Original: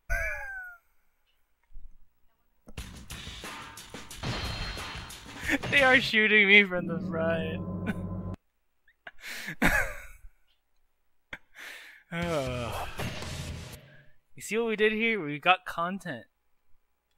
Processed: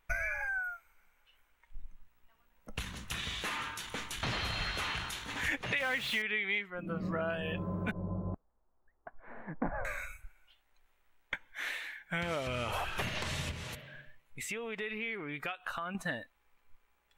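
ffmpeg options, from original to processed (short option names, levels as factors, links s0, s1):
-filter_complex "[0:a]asettb=1/sr,asplit=3[s0][s1][s2];[s0]atrim=end=5.804[s3];[s1]atrim=start=5.8:end=6.22,asetpts=PTS-STARTPTS,afade=t=in:d=0.004:c=qsin,afade=t=out:st=0.416:d=0.004:c=qsin,aeval=exprs='val(0)+0.5*0.0668*sgn(val(0))':c=same[s4];[s2]atrim=start=6.216[s5];[s3][s4]acrossfade=d=0.004:c1=hsin:c2=qsin[s6];[s6][s5]acrossfade=d=0.004:c1=qsin:c2=hsin,asettb=1/sr,asplit=3[s7][s8][s9];[s7]atrim=end=7.914[s10];[s8]atrim=start=7.91:end=9.85,asetpts=PTS-STARTPTS,afade=t=in:d=0.004:c=qsin,afade=t=out:st=1.936:d=0.004:c=qsin,lowpass=f=1000:w=0.5412,lowpass=f=1000:w=1.3066[s11];[s9]atrim=start=9.846[s12];[s10][s11]acrossfade=d=0.004:c1=hsin:c2=qsin[s13];[s13][s12]acrossfade=d=0.004:c1=qsin:c2=hsin,asettb=1/sr,asplit=3[s14][s15][s16];[s14]atrim=end=13.514[s17];[s15]atrim=start=13.51:end=15.95,asetpts=PTS-STARTPTS,afade=t=in:d=0.004:c=qsin,afade=t=out:st=2.436:d=0.004:c=qsin,acompressor=threshold=0.0112:ratio=6:attack=3.2:release=140:knee=1:detection=peak[s18];[s16]atrim=start=15.946[s19];[s17][s18]acrossfade=d=0.004:c1=hsin:c2=qsin[s20];[s20][s19]acrossfade=d=0.004:c1=qsin:c2=hsin,equalizer=f=2000:w=0.45:g=6.5,acompressor=threshold=0.0282:ratio=10,equalizer=f=4800:w=6.4:g=-4"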